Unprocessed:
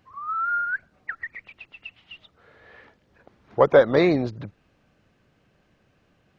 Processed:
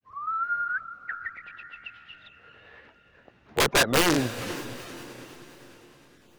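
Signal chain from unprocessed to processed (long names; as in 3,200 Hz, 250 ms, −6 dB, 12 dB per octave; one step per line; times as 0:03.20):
wrap-around overflow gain 12 dB
feedback delay with all-pass diffusion 452 ms, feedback 47%, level −13 dB
granular cloud 232 ms, grains 9.8 per second, spray 26 ms, pitch spread up and down by 0 semitones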